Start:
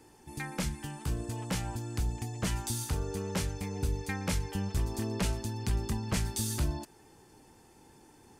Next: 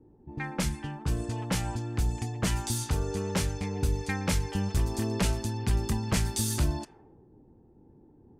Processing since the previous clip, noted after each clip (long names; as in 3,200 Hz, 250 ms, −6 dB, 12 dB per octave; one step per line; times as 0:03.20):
low-pass that shuts in the quiet parts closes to 310 Hz, open at −29.5 dBFS
level +4 dB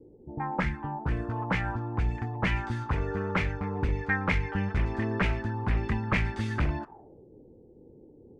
wavefolder on the positive side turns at −22 dBFS
envelope-controlled low-pass 480–2,200 Hz up, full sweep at −24.5 dBFS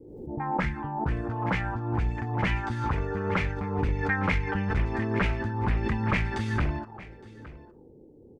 single-tap delay 864 ms −18.5 dB
background raised ahead of every attack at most 49 dB per second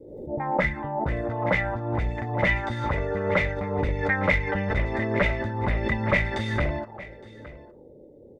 hollow resonant body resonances 580/2,000/3,600 Hz, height 16 dB, ringing for 35 ms